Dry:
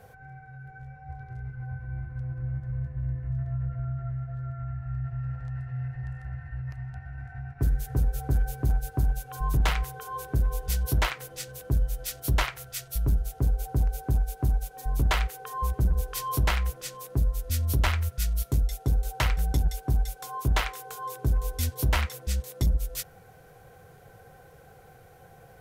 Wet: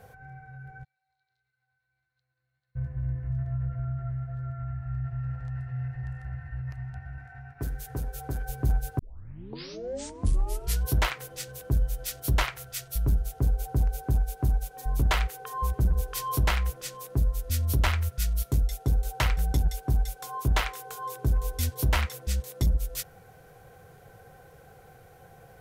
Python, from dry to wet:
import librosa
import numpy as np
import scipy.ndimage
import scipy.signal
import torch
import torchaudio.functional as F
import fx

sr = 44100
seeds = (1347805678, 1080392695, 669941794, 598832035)

y = fx.bandpass_q(x, sr, hz=4100.0, q=9.8, at=(0.83, 2.75), fade=0.02)
y = fx.low_shelf(y, sr, hz=220.0, db=-9.5, at=(7.18, 8.49))
y = fx.edit(y, sr, fx.tape_start(start_s=8.99, length_s=1.86), tone=tone)